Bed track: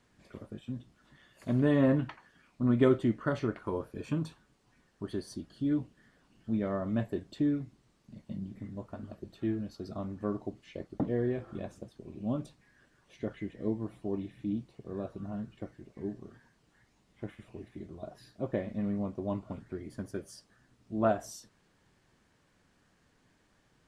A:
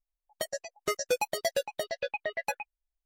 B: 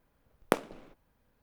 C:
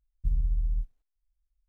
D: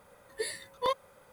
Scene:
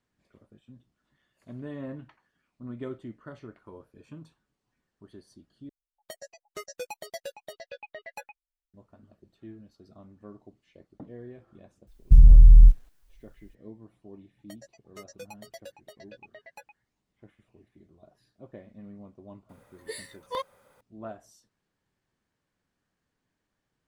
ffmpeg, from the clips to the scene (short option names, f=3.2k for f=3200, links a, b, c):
-filter_complex "[1:a]asplit=2[a][b];[0:a]volume=-13dB[c];[3:a]alimiter=level_in=24.5dB:limit=-1dB:release=50:level=0:latency=1[d];[c]asplit=2[e][f];[e]atrim=end=5.694[g];[a]atrim=end=3.05,asetpts=PTS-STARTPTS,volume=-9.5dB[h];[f]atrim=start=8.736[i];[d]atrim=end=1.68,asetpts=PTS-STARTPTS,volume=-4.5dB,afade=t=in:d=0.004:c=hsin,afade=t=out:st=1.676:d=0.004:c=hsin,adelay=11870[j];[b]atrim=end=3.05,asetpts=PTS-STARTPTS,volume=-16dB,afade=t=in:d=0.004:c=hsin,afade=t=out:st=3.046:d=0.004:c=hsin,adelay=14090[k];[4:a]atrim=end=1.32,asetpts=PTS-STARTPTS,volume=-3.5dB,afade=t=in:d=0.004:c=hsin,afade=t=out:st=1.316:d=0.004:c=hsin,adelay=19490[l];[g][h]acrossfade=d=0.004:c1=hsin:c2=hsin[m];[m][i]acrossfade=d=0.004:c1=hsin:c2=hsin[n];[n][j][k][l]amix=inputs=4:normalize=0"